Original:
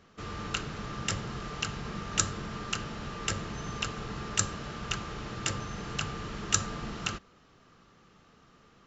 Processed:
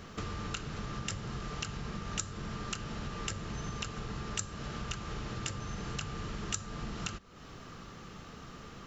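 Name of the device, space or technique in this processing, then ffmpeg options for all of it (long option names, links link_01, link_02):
ASMR close-microphone chain: -af "lowshelf=frequency=150:gain=6,acompressor=threshold=-47dB:ratio=6,highshelf=frequency=6100:gain=5,volume=10dB"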